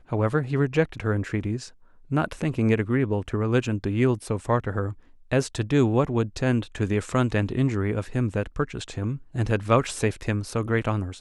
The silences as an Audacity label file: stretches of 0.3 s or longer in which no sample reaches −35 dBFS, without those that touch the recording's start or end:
1.680000	2.110000	silence
4.920000	5.320000	silence